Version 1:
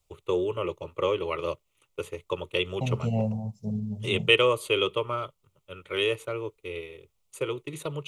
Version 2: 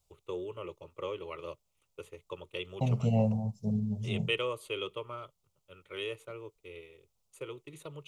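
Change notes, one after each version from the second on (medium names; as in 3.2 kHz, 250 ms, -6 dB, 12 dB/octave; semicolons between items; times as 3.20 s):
first voice -11.5 dB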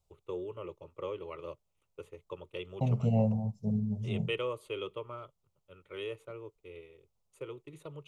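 master: add treble shelf 2 kHz -8.5 dB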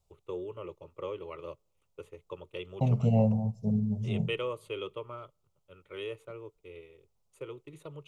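reverb: on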